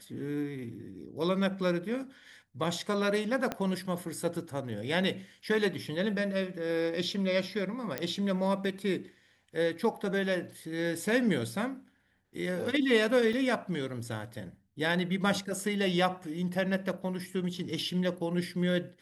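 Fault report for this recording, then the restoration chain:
3.52 s: pop -17 dBFS
7.98 s: pop -16 dBFS
13.33 s: dropout 3.1 ms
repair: de-click; interpolate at 13.33 s, 3.1 ms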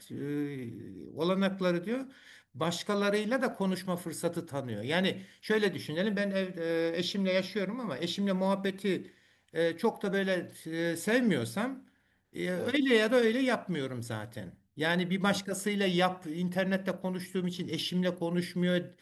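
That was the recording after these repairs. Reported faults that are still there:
3.52 s: pop

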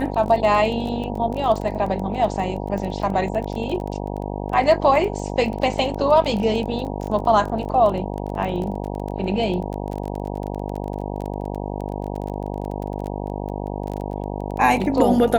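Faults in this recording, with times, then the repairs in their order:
buzz 50 Hz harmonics 19 -28 dBFS
crackle 23 per s -27 dBFS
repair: de-click; de-hum 50 Hz, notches 19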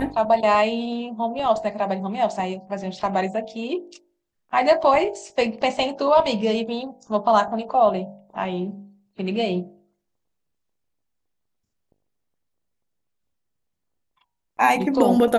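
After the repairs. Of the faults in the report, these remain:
nothing left

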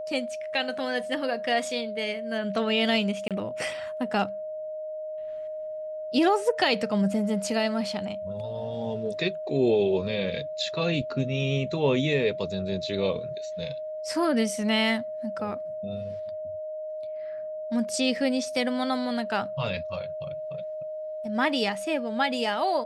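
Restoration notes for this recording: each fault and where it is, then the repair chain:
whine 620 Hz -32 dBFS
3.28–3.31 s: dropout 27 ms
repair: band-stop 620 Hz, Q 30; interpolate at 3.28 s, 27 ms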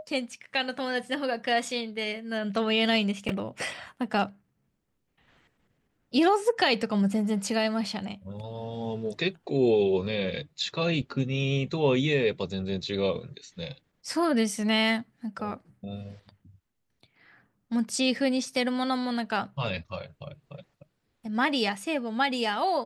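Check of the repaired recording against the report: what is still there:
nothing left

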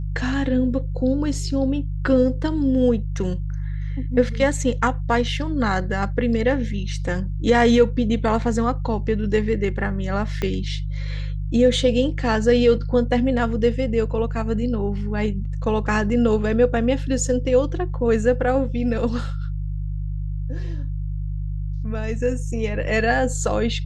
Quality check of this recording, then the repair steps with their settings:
hum 50 Hz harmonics 3 -26 dBFS
10.42 s: pop -12 dBFS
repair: de-click; de-hum 50 Hz, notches 3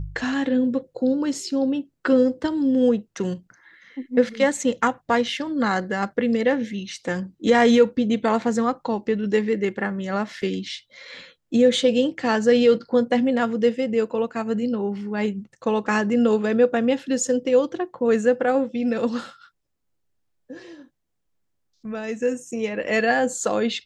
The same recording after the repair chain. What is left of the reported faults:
10.42 s: pop

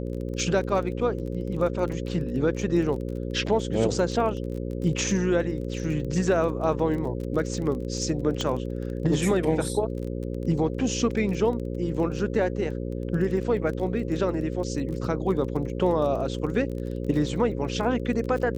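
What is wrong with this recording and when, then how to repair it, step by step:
buzz 60 Hz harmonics 9 -31 dBFS
crackle 23 per s -33 dBFS
8.41 s: pop -15 dBFS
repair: de-click; de-hum 60 Hz, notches 9

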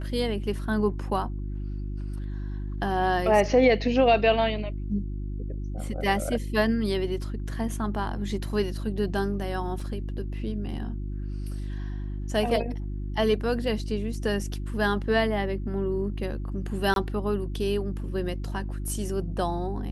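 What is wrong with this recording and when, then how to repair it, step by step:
hum 50 Hz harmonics 7 -32 dBFS
9.80 s: dropout 3.1 ms
16.94–16.96 s: dropout 22 ms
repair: de-hum 50 Hz, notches 7; interpolate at 9.80 s, 3.1 ms; interpolate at 16.94 s, 22 ms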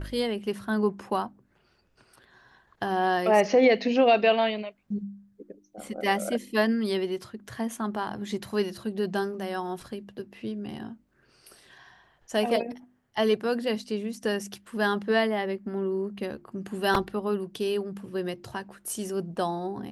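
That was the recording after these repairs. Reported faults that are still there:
nothing left

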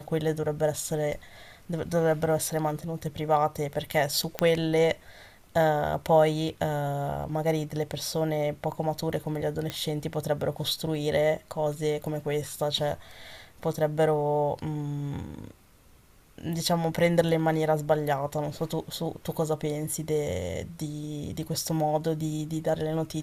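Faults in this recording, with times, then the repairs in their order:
4.39 s: pop -11 dBFS
9.70 s: pop -16 dBFS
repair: de-click

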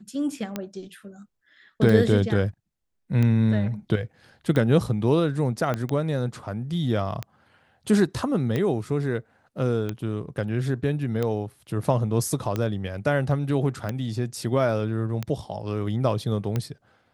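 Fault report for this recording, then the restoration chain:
tick 45 rpm -14 dBFS
5.74 s: pop -14 dBFS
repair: de-click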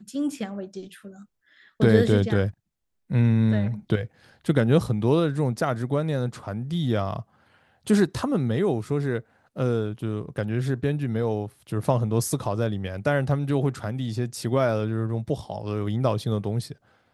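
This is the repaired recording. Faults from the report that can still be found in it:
5.74 s: pop

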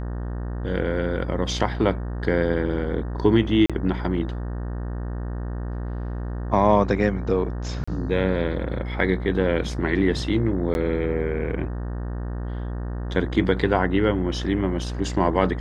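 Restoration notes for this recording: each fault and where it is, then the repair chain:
buzz 60 Hz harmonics 31 -29 dBFS
3.66–3.70 s: dropout 36 ms
7.84–7.88 s: dropout 35 ms
10.74–10.75 s: dropout 11 ms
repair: de-hum 60 Hz, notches 31; interpolate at 3.66 s, 36 ms; interpolate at 7.84 s, 35 ms; interpolate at 10.74 s, 11 ms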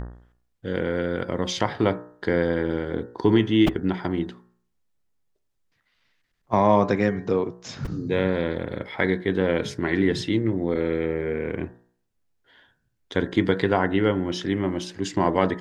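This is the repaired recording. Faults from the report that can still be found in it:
nothing left

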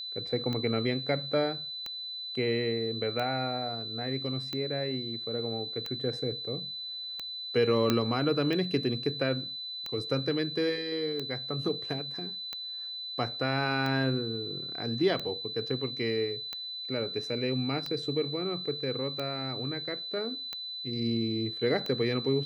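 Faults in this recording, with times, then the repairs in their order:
tick 45 rpm -21 dBFS
whine 4 kHz -36 dBFS
7.90 s: pop -11 dBFS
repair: de-click; band-stop 4 kHz, Q 30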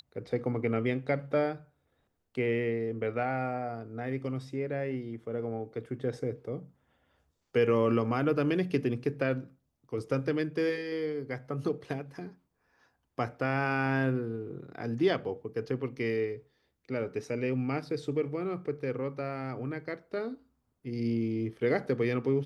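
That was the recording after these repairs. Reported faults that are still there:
7.90 s: pop

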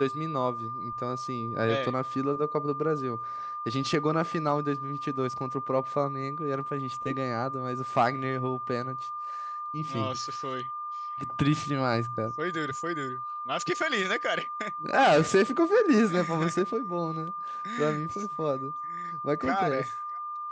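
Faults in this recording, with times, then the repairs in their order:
whine 1.2 kHz -33 dBFS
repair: band-stop 1.2 kHz, Q 30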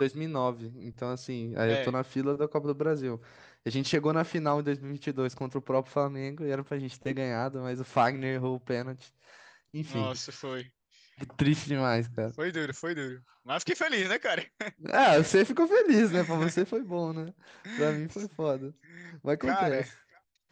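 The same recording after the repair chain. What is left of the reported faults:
nothing left

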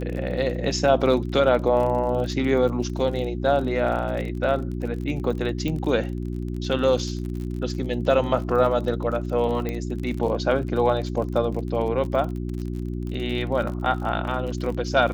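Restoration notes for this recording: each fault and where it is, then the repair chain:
crackle 39 per s -31 dBFS
hum 60 Hz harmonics 6 -29 dBFS
5.68 s: pop -16 dBFS
9.69 s: pop -15 dBFS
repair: de-click; de-hum 60 Hz, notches 6

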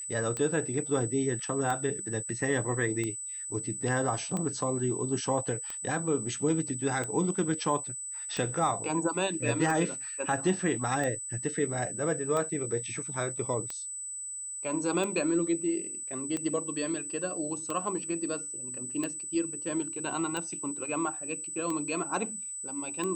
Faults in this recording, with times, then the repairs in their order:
tick 45 rpm -20 dBFS
whine 8 kHz -36 dBFS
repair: de-click; band-stop 8 kHz, Q 30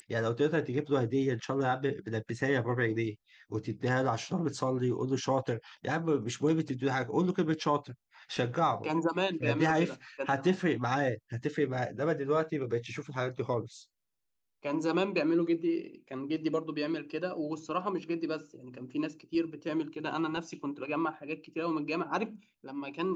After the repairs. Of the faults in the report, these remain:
nothing left

